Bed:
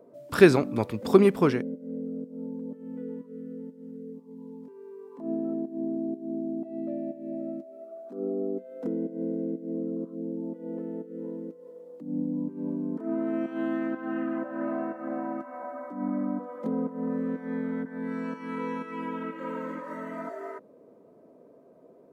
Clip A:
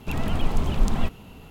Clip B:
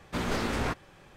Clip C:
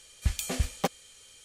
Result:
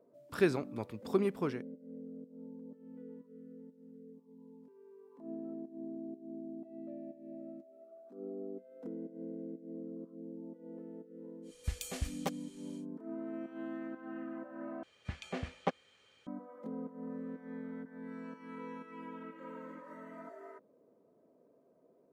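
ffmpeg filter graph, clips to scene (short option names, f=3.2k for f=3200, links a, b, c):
-filter_complex "[3:a]asplit=2[a][b];[0:a]volume=-12.5dB[c];[b]highpass=140,lowpass=2.3k[d];[c]asplit=2[e][f];[e]atrim=end=14.834[g];[d]atrim=end=1.44,asetpts=PTS-STARTPTS,volume=-4dB[h];[f]atrim=start=16.266[i];[a]atrim=end=1.44,asetpts=PTS-STARTPTS,volume=-9dB,afade=t=in:d=0.1,afade=t=out:st=1.34:d=0.1,adelay=11420[j];[g][h]acrossfade=d=0.004:c1=hsin:c2=hsin[k];[k][i]acrossfade=d=0.004:c1=hsin:c2=hsin[l];[l][j]amix=inputs=2:normalize=0"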